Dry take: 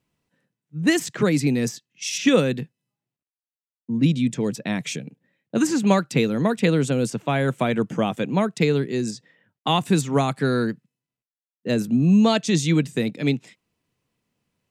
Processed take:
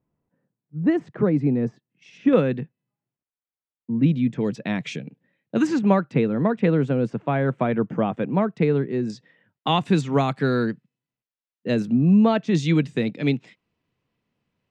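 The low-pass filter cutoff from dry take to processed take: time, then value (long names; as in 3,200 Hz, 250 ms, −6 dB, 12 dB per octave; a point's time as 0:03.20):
1,000 Hz
from 0:02.33 2,000 Hz
from 0:04.41 3,500 Hz
from 0:05.79 1,700 Hz
from 0:09.10 4,000 Hz
from 0:11.92 1,900 Hz
from 0:12.55 3,800 Hz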